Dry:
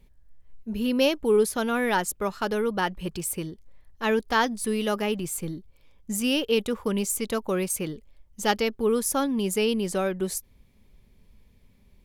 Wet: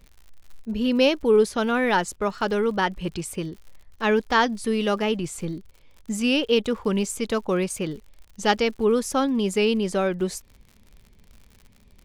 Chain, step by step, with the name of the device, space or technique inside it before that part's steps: lo-fi chain (LPF 6400 Hz 12 dB/oct; wow and flutter; crackle 77/s -42 dBFS); gain +3 dB

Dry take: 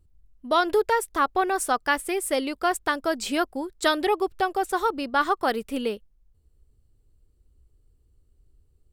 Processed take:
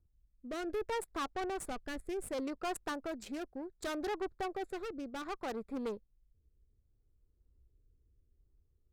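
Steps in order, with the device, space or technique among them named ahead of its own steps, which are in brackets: Wiener smoothing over 15 samples; overdriven rotary cabinet (tube stage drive 27 dB, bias 0.5; rotary speaker horn 0.65 Hz); 1.41–2.29 low shelf 130 Hz +10.5 dB; gain -5 dB

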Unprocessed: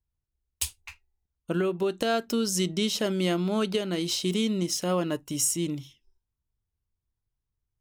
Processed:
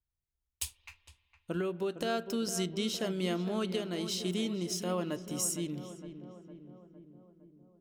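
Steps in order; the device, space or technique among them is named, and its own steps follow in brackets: dub delay into a spring reverb (darkening echo 0.459 s, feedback 63%, low-pass 1500 Hz, level -10 dB; spring tank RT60 3.2 s, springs 35/56 ms, chirp 65 ms, DRR 19 dB); gain -7 dB

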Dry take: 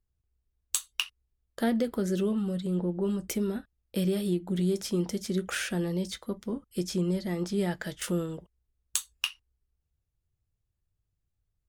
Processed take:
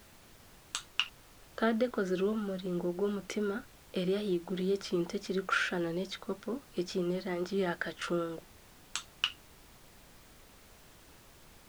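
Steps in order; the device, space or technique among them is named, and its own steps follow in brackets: horn gramophone (BPF 280–4200 Hz; bell 1400 Hz +10 dB 0.23 oct; wow and flutter; pink noise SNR 21 dB)

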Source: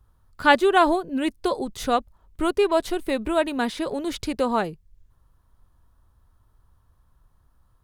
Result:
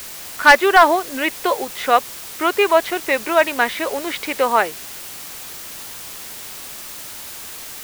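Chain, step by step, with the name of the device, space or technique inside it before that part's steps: drive-through speaker (BPF 520–3100 Hz; bell 2100 Hz +8.5 dB 0.77 oct; hard clip -10 dBFS, distortion -12 dB; white noise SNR 14 dB); gain +8 dB

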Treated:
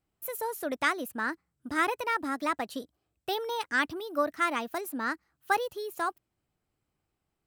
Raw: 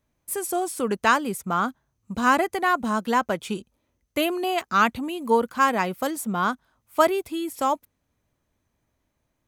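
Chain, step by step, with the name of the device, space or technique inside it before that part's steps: nightcore (varispeed +27%); gain -7.5 dB

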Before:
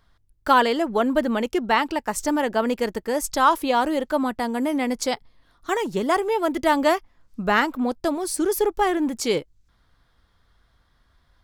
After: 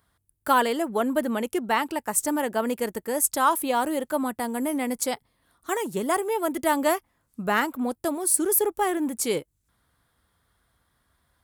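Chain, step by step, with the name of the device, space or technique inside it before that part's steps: budget condenser microphone (HPF 73 Hz 12 dB/oct; resonant high shelf 7200 Hz +10.5 dB, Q 1.5); gain -3.5 dB

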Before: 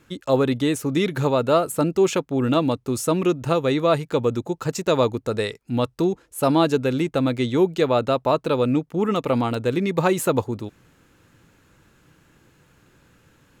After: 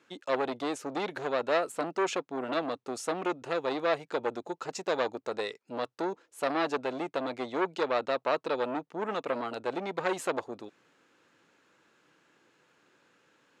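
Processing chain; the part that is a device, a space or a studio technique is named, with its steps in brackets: public-address speaker with an overloaded transformer (core saturation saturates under 1300 Hz; BPF 350–6300 Hz); gain -5.5 dB

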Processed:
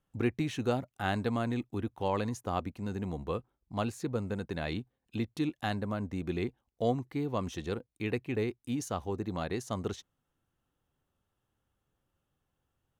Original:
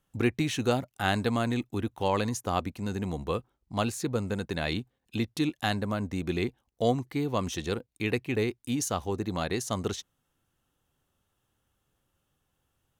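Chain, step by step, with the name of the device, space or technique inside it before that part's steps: behind a face mask (high shelf 2700 Hz -8 dB); gain -3.5 dB

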